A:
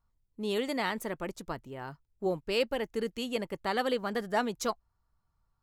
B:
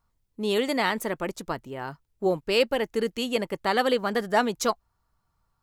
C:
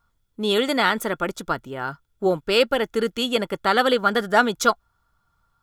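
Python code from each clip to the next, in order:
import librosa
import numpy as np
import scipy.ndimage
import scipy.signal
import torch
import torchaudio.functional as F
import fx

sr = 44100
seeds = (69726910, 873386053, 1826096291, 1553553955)

y1 = fx.low_shelf(x, sr, hz=120.0, db=-6.5)
y1 = F.gain(torch.from_numpy(y1), 7.0).numpy()
y2 = fx.small_body(y1, sr, hz=(1400.0, 3400.0), ring_ms=25, db=13)
y2 = F.gain(torch.from_numpy(y2), 3.5).numpy()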